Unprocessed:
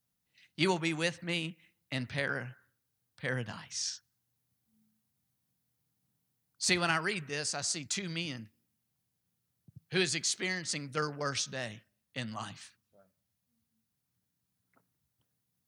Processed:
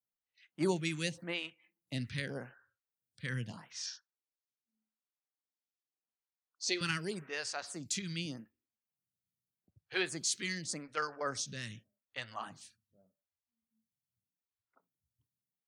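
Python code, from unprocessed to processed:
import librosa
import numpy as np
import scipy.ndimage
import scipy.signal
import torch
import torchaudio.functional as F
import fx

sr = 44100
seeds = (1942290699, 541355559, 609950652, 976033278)

y = fx.noise_reduce_blind(x, sr, reduce_db=13)
y = fx.cheby1_bandpass(y, sr, low_hz=330.0, high_hz=6100.0, order=3, at=(3.86, 6.81))
y = fx.stagger_phaser(y, sr, hz=0.84)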